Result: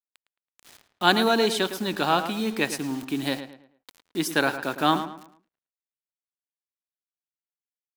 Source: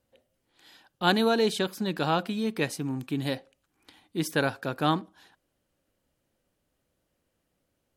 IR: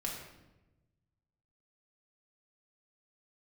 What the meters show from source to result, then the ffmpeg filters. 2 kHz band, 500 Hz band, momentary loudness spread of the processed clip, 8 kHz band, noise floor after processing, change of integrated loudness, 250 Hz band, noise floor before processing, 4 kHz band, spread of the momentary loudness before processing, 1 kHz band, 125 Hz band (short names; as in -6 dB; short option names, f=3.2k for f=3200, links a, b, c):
+5.5 dB, +2.0 dB, 10 LU, +5.5 dB, under -85 dBFS, +3.5 dB, +2.0 dB, -78 dBFS, +5.0 dB, 9 LU, +5.0 dB, -3.0 dB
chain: -filter_complex "[0:a]highpass=250,equalizer=f=500:w=3.2:g=-6,acrusher=bits=7:mix=0:aa=0.000001,asplit=2[a][b];[b]adelay=109,lowpass=f=3.1k:p=1,volume=-10.5dB,asplit=2[c][d];[d]adelay=109,lowpass=f=3.1k:p=1,volume=0.35,asplit=2[e][f];[f]adelay=109,lowpass=f=3.1k:p=1,volume=0.35,asplit=2[g][h];[h]adelay=109,lowpass=f=3.1k:p=1,volume=0.35[i];[c][e][g][i]amix=inputs=4:normalize=0[j];[a][j]amix=inputs=2:normalize=0,volume=5dB"